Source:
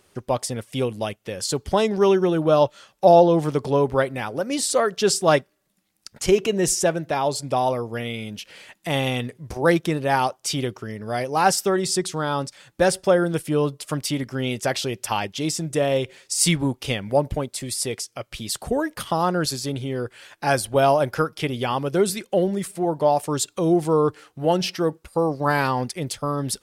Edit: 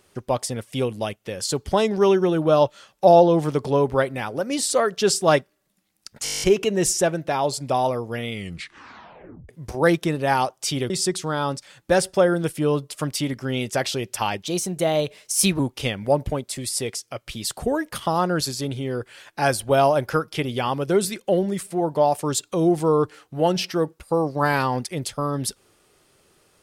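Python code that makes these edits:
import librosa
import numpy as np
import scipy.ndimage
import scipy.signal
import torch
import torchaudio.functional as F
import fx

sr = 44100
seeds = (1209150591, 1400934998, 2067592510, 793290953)

y = fx.edit(x, sr, fx.stutter(start_s=6.24, slice_s=0.02, count=10),
    fx.tape_stop(start_s=8.13, length_s=1.18),
    fx.cut(start_s=10.72, length_s=1.08),
    fx.speed_span(start_s=15.36, length_s=1.28, speed=1.13), tone=tone)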